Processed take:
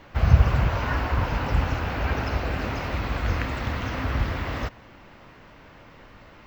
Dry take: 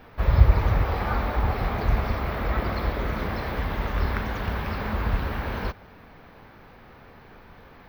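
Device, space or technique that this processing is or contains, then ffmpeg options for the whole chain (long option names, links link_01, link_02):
nightcore: -af "asetrate=53802,aresample=44100"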